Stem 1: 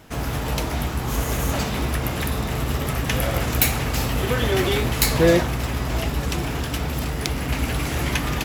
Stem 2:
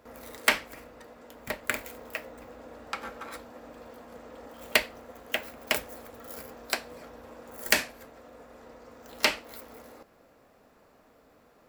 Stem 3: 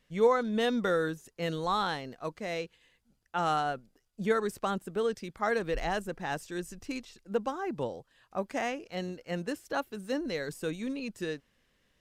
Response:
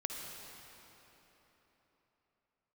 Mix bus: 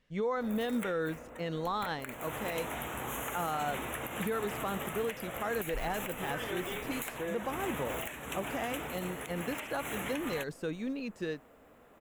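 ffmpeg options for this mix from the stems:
-filter_complex "[0:a]highpass=f=550:p=1,dynaudnorm=f=130:g=7:m=7dB,adelay=2000,volume=-8.5dB[a];[1:a]adelay=350,volume=1dB[b];[2:a]lowpass=f=3.5k:p=1,volume=-1dB[c];[a][b]amix=inputs=2:normalize=0,asuperstop=centerf=4800:order=4:qfactor=1.3,acompressor=threshold=-35dB:ratio=5,volume=0dB[d];[c][d]amix=inputs=2:normalize=0,alimiter=level_in=0.5dB:limit=-24dB:level=0:latency=1:release=63,volume=-0.5dB"

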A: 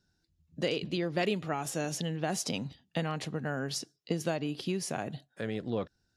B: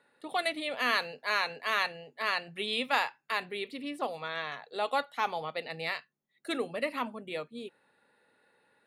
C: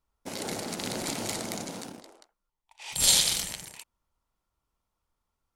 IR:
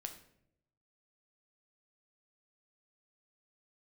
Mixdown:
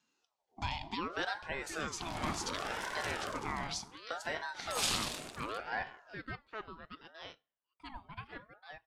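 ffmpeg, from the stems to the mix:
-filter_complex "[0:a]bandreject=f=46.41:t=h:w=4,bandreject=f=92.82:t=h:w=4,bandreject=f=139.23:t=h:w=4,bandreject=f=185.64:t=h:w=4,bandreject=f=232.05:t=h:w=4,bandreject=f=278.46:t=h:w=4,bandreject=f=324.87:t=h:w=4,bandreject=f=371.28:t=h:w=4,bandreject=f=417.69:t=h:w=4,bandreject=f=464.1:t=h:w=4,bandreject=f=510.51:t=h:w=4,bandreject=f=556.92:t=h:w=4,bandreject=f=603.33:t=h:w=4,bandreject=f=649.74:t=h:w=4,volume=1.5dB,asplit=2[a][b];[b]volume=-9dB[c];[1:a]aemphasis=mode=reproduction:type=50fm,adelay=1350,volume=-11dB,asplit=2[d][e];[e]volume=-20.5dB[f];[2:a]lowpass=f=2.4k:p=1,adelay=1750,volume=-5dB,asplit=2[g][h];[h]volume=-4dB[i];[a][d]amix=inputs=2:normalize=0,highpass=280,lowpass=7.4k,alimiter=level_in=2.5dB:limit=-24dB:level=0:latency=1:release=483,volume=-2.5dB,volume=0dB[j];[3:a]atrim=start_sample=2205[k];[c][f][i]amix=inputs=3:normalize=0[l];[l][k]afir=irnorm=-1:irlink=0[m];[g][j][m]amix=inputs=3:normalize=0,aeval=exprs='val(0)*sin(2*PI*850*n/s+850*0.5/0.68*sin(2*PI*0.68*n/s))':c=same"

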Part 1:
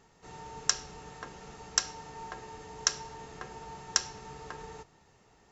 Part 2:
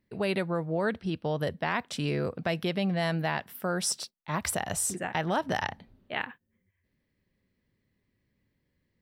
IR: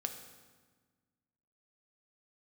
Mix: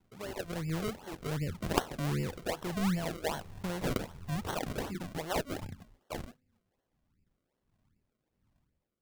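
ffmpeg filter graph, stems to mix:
-filter_complex "[0:a]asubboost=boost=7.5:cutoff=110,aeval=exprs='val(0)*sin(2*PI*42*n/s)':c=same,volume=-4.5dB,asplit=2[a][b];[b]volume=-3.5dB[c];[1:a]dynaudnorm=f=190:g=5:m=9dB,asoftclip=type=tanh:threshold=-16dB,lowshelf=f=65:g=10.5,volume=-8.5dB,asplit=2[d][e];[e]volume=-24dB[f];[2:a]atrim=start_sample=2205[g];[c][f]amix=inputs=2:normalize=0[h];[h][g]afir=irnorm=-1:irlink=0[i];[a][d][i]amix=inputs=3:normalize=0,acrossover=split=400[j][k];[j]aeval=exprs='val(0)*(1-1/2+1/2*cos(2*PI*1.4*n/s))':c=same[l];[k]aeval=exprs='val(0)*(1-1/2-1/2*cos(2*PI*1.4*n/s))':c=same[m];[l][m]amix=inputs=2:normalize=0,acrusher=samples=35:mix=1:aa=0.000001:lfo=1:lforange=35:lforate=2.6"

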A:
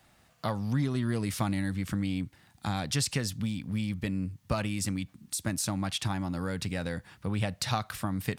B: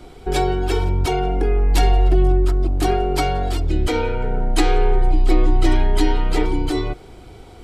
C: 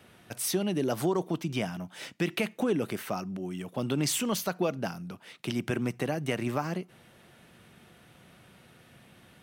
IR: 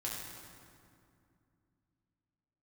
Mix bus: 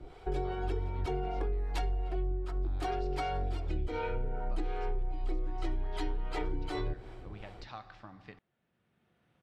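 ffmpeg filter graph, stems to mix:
-filter_complex "[0:a]lowpass=f=5.4k:w=0.5412,lowpass=f=5.4k:w=1.3066,equalizer=f=110:w=0.46:g=-13,volume=-14dB,asplit=3[a][b][c];[b]volume=-8dB[d];[1:a]equalizer=f=230:w=1.9:g=-8,acrossover=split=510[e][f];[e]aeval=exprs='val(0)*(1-0.7/2+0.7/2*cos(2*PI*2.6*n/s))':c=same[g];[f]aeval=exprs='val(0)*(1-0.7/2-0.7/2*cos(2*PI*2.6*n/s))':c=same[h];[g][h]amix=inputs=2:normalize=0,volume=-4.5dB,asplit=2[i][j];[j]volume=-22dB[k];[2:a]acompressor=threshold=-39dB:ratio=6,adelay=1200,volume=-14dB[l];[c]apad=whole_len=468576[m];[l][m]sidechaincompress=threshold=-59dB:ratio=5:attack=41:release=1030[n];[3:a]atrim=start_sample=2205[o];[d][k]amix=inputs=2:normalize=0[p];[p][o]afir=irnorm=-1:irlink=0[q];[a][i][n][q]amix=inputs=4:normalize=0,aemphasis=mode=reproduction:type=75kf,acompressor=threshold=-29dB:ratio=12"

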